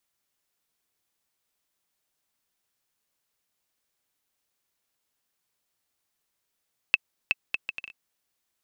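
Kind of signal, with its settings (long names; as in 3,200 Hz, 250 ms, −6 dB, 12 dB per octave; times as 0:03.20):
bouncing ball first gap 0.37 s, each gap 0.63, 2,630 Hz, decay 29 ms −5.5 dBFS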